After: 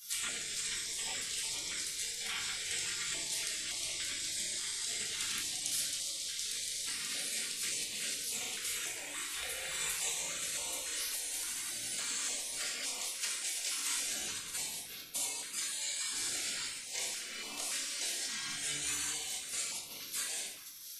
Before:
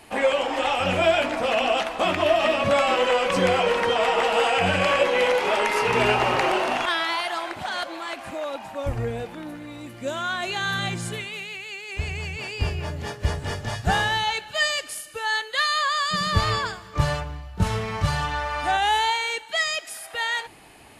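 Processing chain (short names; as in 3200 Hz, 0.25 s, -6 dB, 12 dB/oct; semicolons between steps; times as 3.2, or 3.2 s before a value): ten-band EQ 250 Hz +7 dB, 500 Hz -3 dB, 1000 Hz +6 dB, 8000 Hz +10 dB; compressor 10:1, threshold -35 dBFS, peak gain reduction 22 dB; spectral gate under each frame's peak -25 dB weak; tilt +2 dB/oct; shoebox room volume 320 m³, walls mixed, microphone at 1.7 m; stepped notch 3.5 Hz 590–1600 Hz; gain +8.5 dB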